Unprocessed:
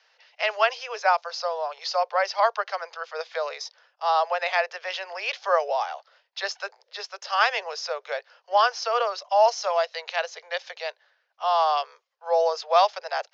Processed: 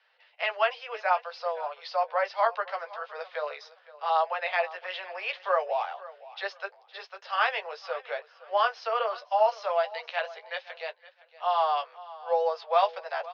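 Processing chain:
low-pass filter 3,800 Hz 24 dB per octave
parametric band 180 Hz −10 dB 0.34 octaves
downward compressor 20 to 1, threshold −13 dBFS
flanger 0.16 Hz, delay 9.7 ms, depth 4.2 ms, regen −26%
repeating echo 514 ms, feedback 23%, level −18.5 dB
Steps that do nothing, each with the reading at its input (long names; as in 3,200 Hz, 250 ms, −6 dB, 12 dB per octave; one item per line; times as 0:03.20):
parametric band 180 Hz: nothing at its input below 380 Hz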